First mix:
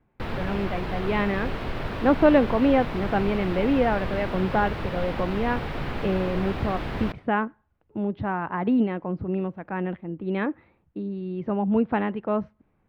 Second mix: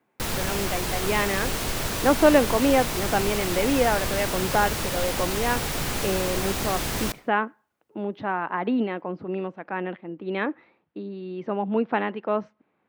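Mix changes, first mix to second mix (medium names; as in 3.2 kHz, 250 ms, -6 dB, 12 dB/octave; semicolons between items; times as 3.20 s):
speech: add band-pass 260–3100 Hz; master: remove distance through air 410 m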